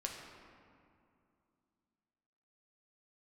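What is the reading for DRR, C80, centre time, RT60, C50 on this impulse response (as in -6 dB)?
-0.5 dB, 4.0 dB, 75 ms, 2.5 s, 3.0 dB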